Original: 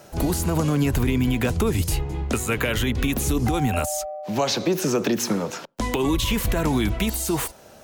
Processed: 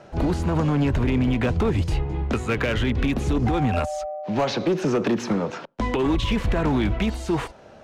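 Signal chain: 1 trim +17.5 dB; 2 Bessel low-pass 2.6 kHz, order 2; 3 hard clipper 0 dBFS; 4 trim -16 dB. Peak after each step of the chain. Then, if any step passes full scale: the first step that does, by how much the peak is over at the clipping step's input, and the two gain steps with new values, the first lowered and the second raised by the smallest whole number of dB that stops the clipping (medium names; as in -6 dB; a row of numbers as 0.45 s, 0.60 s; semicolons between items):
+6.0 dBFS, +6.0 dBFS, 0.0 dBFS, -16.0 dBFS; step 1, 6.0 dB; step 1 +11.5 dB, step 4 -10 dB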